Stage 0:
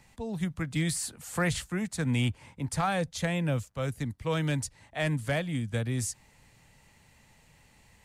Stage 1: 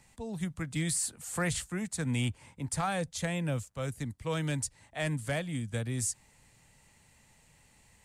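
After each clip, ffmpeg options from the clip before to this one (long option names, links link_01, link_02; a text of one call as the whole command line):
ffmpeg -i in.wav -af "equalizer=frequency=8400:width=1.4:gain=7,volume=-3.5dB" out.wav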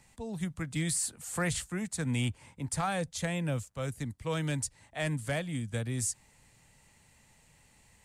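ffmpeg -i in.wav -af anull out.wav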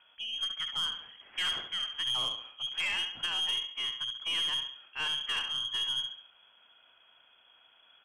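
ffmpeg -i in.wav -af "aecho=1:1:69|138|207|276|345:0.422|0.173|0.0709|0.0291|0.0119,lowpass=frequency=2900:width_type=q:width=0.5098,lowpass=frequency=2900:width_type=q:width=0.6013,lowpass=frequency=2900:width_type=q:width=0.9,lowpass=frequency=2900:width_type=q:width=2.563,afreqshift=-3400,aeval=exprs='(tanh(20*val(0)+0.2)-tanh(0.2))/20':channel_layout=same,volume=1dB" out.wav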